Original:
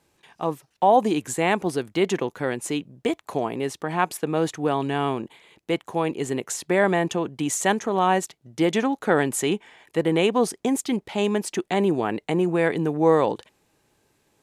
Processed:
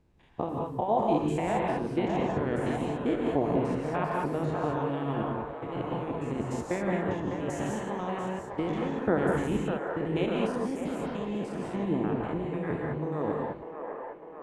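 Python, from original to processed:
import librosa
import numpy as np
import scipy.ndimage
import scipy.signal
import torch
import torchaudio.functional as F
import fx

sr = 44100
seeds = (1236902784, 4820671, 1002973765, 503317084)

y = fx.spec_steps(x, sr, hold_ms=100)
y = fx.rider(y, sr, range_db=10, speed_s=2.0)
y = fx.riaa(y, sr, side='playback')
y = y + 10.0 ** (-19.5 / 20.0) * np.pad(y, (int(212 * sr / 1000.0), 0))[:len(y)]
y = fx.hpss(y, sr, part='harmonic', gain_db=-14)
y = fx.low_shelf(y, sr, hz=170.0, db=3.5)
y = fx.echo_wet_bandpass(y, sr, ms=601, feedback_pct=63, hz=920.0, wet_db=-4.5)
y = fx.rev_gated(y, sr, seeds[0], gate_ms=230, shape='rising', drr_db=-1.0)
y = y * 10.0 ** (-5.5 / 20.0)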